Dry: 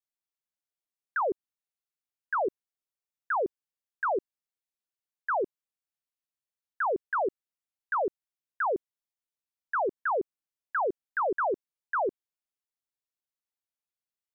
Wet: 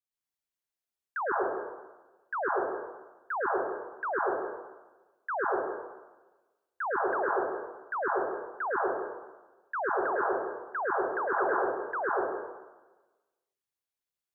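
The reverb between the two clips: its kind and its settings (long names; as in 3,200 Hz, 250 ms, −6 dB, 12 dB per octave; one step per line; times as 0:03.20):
dense smooth reverb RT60 1.2 s, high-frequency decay 0.9×, pre-delay 95 ms, DRR −4.5 dB
level −5 dB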